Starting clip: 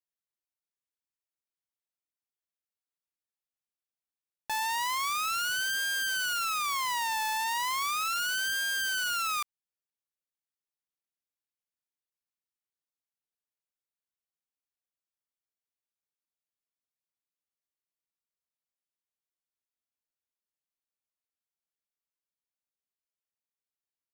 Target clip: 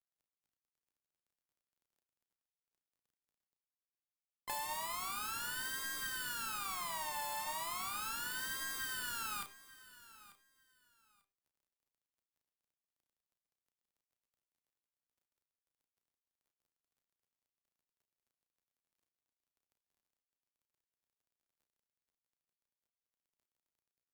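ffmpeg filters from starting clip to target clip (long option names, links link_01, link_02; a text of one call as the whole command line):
ffmpeg -i in.wav -filter_complex "[0:a]areverse,acompressor=mode=upward:threshold=-34dB:ratio=2.5,areverse,highshelf=frequency=7000:gain=5,asplit=4[link_01][link_02][link_03][link_04];[link_02]asetrate=29433,aresample=44100,atempo=1.49831,volume=-14dB[link_05];[link_03]asetrate=37084,aresample=44100,atempo=1.18921,volume=-18dB[link_06];[link_04]asetrate=52444,aresample=44100,atempo=0.840896,volume=-8dB[link_07];[link_01][link_05][link_06][link_07]amix=inputs=4:normalize=0,bandreject=frequency=6000:width=6.6,bandreject=frequency=99.49:width_type=h:width=4,bandreject=frequency=198.98:width_type=h:width=4,bandreject=frequency=298.47:width_type=h:width=4,bandreject=frequency=397.96:width_type=h:width=4,bandreject=frequency=497.45:width_type=h:width=4,bandreject=frequency=596.94:width_type=h:width=4,bandreject=frequency=696.43:width_type=h:width=4,bandreject=frequency=795.92:width_type=h:width=4,bandreject=frequency=895.41:width_type=h:width=4,bandreject=frequency=994.9:width_type=h:width=4,bandreject=frequency=1094.39:width_type=h:width=4,bandreject=frequency=1193.88:width_type=h:width=4,bandreject=frequency=1293.37:width_type=h:width=4,bandreject=frequency=1392.86:width_type=h:width=4,bandreject=frequency=1492.35:width_type=h:width=4,bandreject=frequency=1591.84:width_type=h:width=4,bandreject=frequency=1691.33:width_type=h:width=4,bandreject=frequency=1790.82:width_type=h:width=4,bandreject=frequency=1890.31:width_type=h:width=4,bandreject=frequency=1989.8:width_type=h:width=4,bandreject=frequency=2089.29:width_type=h:width=4,bandreject=frequency=2188.78:width_type=h:width=4,bandreject=frequency=2288.27:width_type=h:width=4,bandreject=frequency=2387.76:width_type=h:width=4,bandreject=frequency=2487.25:width_type=h:width=4,bandreject=frequency=2586.74:width_type=h:width=4,bandreject=frequency=2686.23:width_type=h:width=4,bandreject=frequency=2785.72:width_type=h:width=4,bandreject=frequency=2885.21:width_type=h:width=4,bandreject=frequency=2984.7:width_type=h:width=4,bandreject=frequency=3084.19:width_type=h:width=4,bandreject=frequency=3183.68:width_type=h:width=4,bandreject=frequency=3283.17:width_type=h:width=4,bandreject=frequency=3382.66:width_type=h:width=4,bandreject=frequency=3482.15:width_type=h:width=4,bandreject=frequency=3581.64:width_type=h:width=4,bandreject=frequency=3681.13:width_type=h:width=4,aeval=exprs='sgn(val(0))*max(abs(val(0))-0.00447,0)':channel_layout=same,acrossover=split=420|4600[link_08][link_09][link_10];[link_08]acompressor=threshold=-59dB:ratio=4[link_11];[link_09]acompressor=threshold=-44dB:ratio=4[link_12];[link_10]acompressor=threshold=-37dB:ratio=4[link_13];[link_11][link_12][link_13]amix=inputs=3:normalize=0,tiltshelf=frequency=1400:gain=4,asplit=2[link_14][link_15];[link_15]adelay=33,volume=-8dB[link_16];[link_14][link_16]amix=inputs=2:normalize=0,asplit=2[link_17][link_18];[link_18]aecho=0:1:892|1784:0.126|0.0252[link_19];[link_17][link_19]amix=inputs=2:normalize=0" out.wav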